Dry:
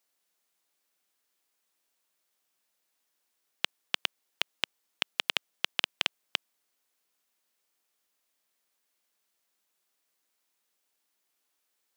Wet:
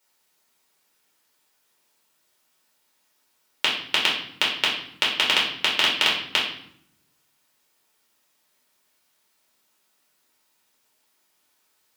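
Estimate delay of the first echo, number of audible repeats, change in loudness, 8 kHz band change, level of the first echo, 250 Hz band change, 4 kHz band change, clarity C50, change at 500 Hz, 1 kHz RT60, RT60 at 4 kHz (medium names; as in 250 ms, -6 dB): no echo, no echo, +11.0 dB, +10.0 dB, no echo, +13.0 dB, +11.5 dB, 4.5 dB, +11.5 dB, 0.65 s, 0.55 s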